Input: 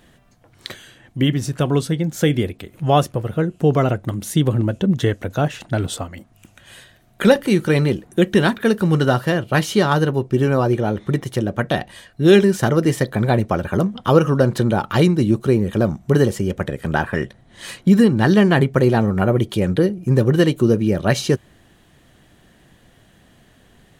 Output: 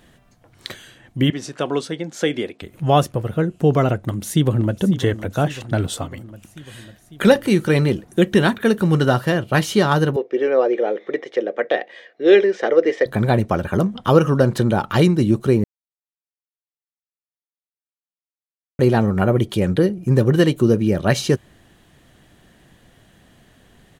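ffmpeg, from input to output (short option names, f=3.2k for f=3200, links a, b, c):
-filter_complex "[0:a]asettb=1/sr,asplit=3[a][b][c];[a]atrim=end=1.304[d];[b]atrim=start=1.3:end=2.62,asetpts=PTS-STARTPTS,afade=t=in:d=0.004:c=qsin,afade=t=out:st=1.316:d=0.004:c=qsin,highpass=320,lowpass=6.9k[e];[c]atrim=start=2.616[f];[d][e]acrossfade=d=0.004:c1=hsin:c2=qsin[g];[g][f]acrossfade=d=0.004:c1=qsin:c2=hsin,asplit=2[h][i];[i]afade=t=in:st=4.08:d=0.01,afade=t=out:st=4.75:d=0.01,aecho=0:1:550|1100|1650|2200|2750|3300|3850|4400|4950:0.199526|0.139668|0.0977679|0.0684375|0.0479062|0.0335344|0.0234741|0.0164318|0.0115023[j];[h][j]amix=inputs=2:normalize=0,asettb=1/sr,asplit=3[k][l][m];[k]atrim=end=8.394[n];[l]atrim=start=8.39:end=8.82,asetpts=PTS-STARTPTS,afade=t=in:d=0.004:c=qsin,afade=t=out:st=0.426:d=0.004:c=qsin,bandreject=f=5k:w=7.1[o];[m]atrim=start=8.816[p];[n][o]acrossfade=d=0.004:c1=hsin:c2=qsin[q];[q][p]acrossfade=d=0.004:c1=qsin:c2=hsin,asettb=1/sr,asplit=3[r][s][t];[r]atrim=end=10.164[u];[s]atrim=start=10.16:end=13.06,asetpts=PTS-STARTPTS,afade=t=in:d=0.004:c=qsin,afade=t=out:st=2.896:d=0.004:c=qsin,highpass=f=350:w=0.5412,highpass=f=350:w=1.3066,equalizer=f=490:t=q:w=4:g=9,equalizer=f=970:t=q:w=4:g=-8,equalizer=f=1.4k:t=q:w=4:g=-5,equalizer=f=2k:t=q:w=4:g=6,equalizer=f=2.9k:t=q:w=4:g=-4,equalizer=f=4.3k:t=q:w=4:g=-8,lowpass=f=4.6k:w=0.5412,lowpass=f=4.6k:w=1.3066[v];[t]atrim=start=13.056[w];[u][v]acrossfade=d=0.004:c1=hsin:c2=qsin[x];[x][w]acrossfade=d=0.004:c1=qsin:c2=hsin,asplit=3[y][z][aa];[y]atrim=end=15.64,asetpts=PTS-STARTPTS,afade=t=out:st=15.636:d=0.004:c=hsin[ab];[z]atrim=start=15.64:end=18.79,asetpts=PTS-STARTPTS,volume=0[ac];[aa]atrim=start=18.79,asetpts=PTS-STARTPTS,afade=t=in:d=0.004:c=hsin[ad];[ab][ac][ad]concat=n=3:v=0:a=1"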